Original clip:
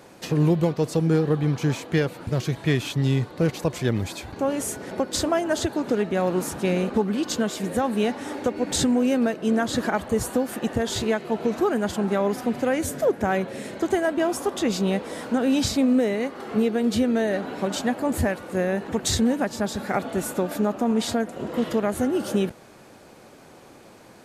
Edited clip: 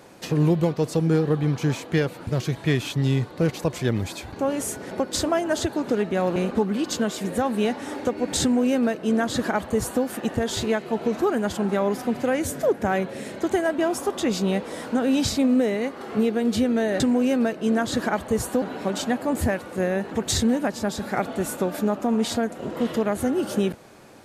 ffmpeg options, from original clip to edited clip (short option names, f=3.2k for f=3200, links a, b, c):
-filter_complex "[0:a]asplit=4[a][b][c][d];[a]atrim=end=6.362[e];[b]atrim=start=6.748:end=17.392[f];[c]atrim=start=8.808:end=10.432[g];[d]atrim=start=17.388[h];[e][f]acrossfade=d=0.004:c1=hsin:c2=hsin[i];[i][g]acrossfade=d=0.004:c1=hsin:c2=hsin[j];[j][h]acrossfade=d=0.004:c1=hsin:c2=hsin"